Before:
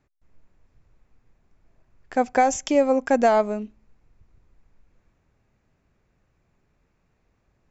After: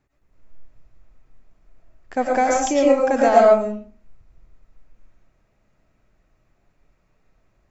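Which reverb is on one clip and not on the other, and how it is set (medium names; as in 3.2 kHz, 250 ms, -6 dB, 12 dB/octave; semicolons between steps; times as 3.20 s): algorithmic reverb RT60 0.41 s, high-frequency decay 0.55×, pre-delay 70 ms, DRR -3 dB; trim -1 dB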